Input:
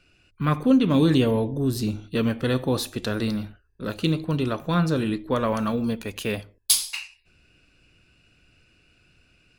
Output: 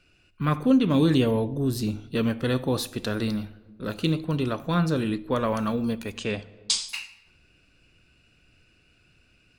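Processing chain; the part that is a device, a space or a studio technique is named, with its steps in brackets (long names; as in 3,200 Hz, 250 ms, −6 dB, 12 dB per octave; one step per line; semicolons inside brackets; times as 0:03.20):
0:06.15–0:06.89: Butterworth low-pass 8,600 Hz 72 dB per octave
compressed reverb return (on a send at −12.5 dB: convolution reverb RT60 1.0 s, pre-delay 56 ms + downward compressor, threshold −31 dBFS, peak gain reduction 18 dB)
on the sum: level −1.5 dB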